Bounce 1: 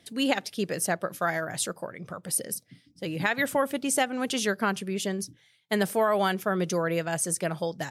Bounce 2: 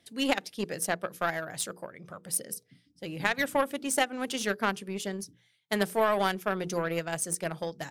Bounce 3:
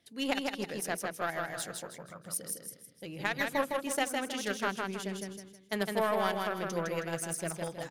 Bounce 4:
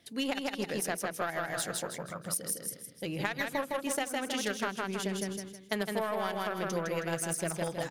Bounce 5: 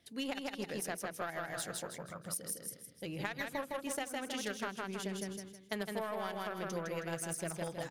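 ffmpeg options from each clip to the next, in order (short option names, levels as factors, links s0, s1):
-af "bandreject=f=60:t=h:w=6,bandreject=f=120:t=h:w=6,bandreject=f=180:t=h:w=6,bandreject=f=240:t=h:w=6,bandreject=f=300:t=h:w=6,bandreject=f=360:t=h:w=6,bandreject=f=420:t=h:w=6,bandreject=f=480:t=h:w=6,aeval=exprs='0.355*(cos(1*acos(clip(val(0)/0.355,-1,1)))-cos(1*PI/2))+0.0251*(cos(7*acos(clip(val(0)/0.355,-1,1)))-cos(7*PI/2))':c=same"
-filter_complex "[0:a]equalizer=f=8100:w=5.8:g=-4.5,asplit=2[s0][s1];[s1]aecho=0:1:159|318|477|636|795:0.668|0.241|0.0866|0.0312|0.0112[s2];[s0][s2]amix=inputs=2:normalize=0,volume=0.562"
-af "acompressor=threshold=0.0158:ratio=6,volume=2.24"
-af "equalizer=f=61:w=1.5:g=8.5,volume=0.501"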